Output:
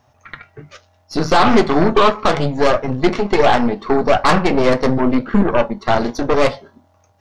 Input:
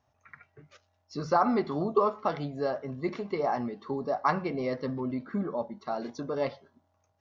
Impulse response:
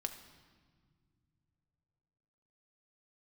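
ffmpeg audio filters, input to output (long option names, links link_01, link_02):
-af "apsyclip=23dB,aeval=exprs='1.06*(cos(1*acos(clip(val(0)/1.06,-1,1)))-cos(1*PI/2))+0.299*(cos(4*acos(clip(val(0)/1.06,-1,1)))-cos(4*PI/2))':channel_layout=same,flanger=delay=8.1:depth=2.3:regen=-68:speed=0.36:shape=triangular,volume=-2.5dB"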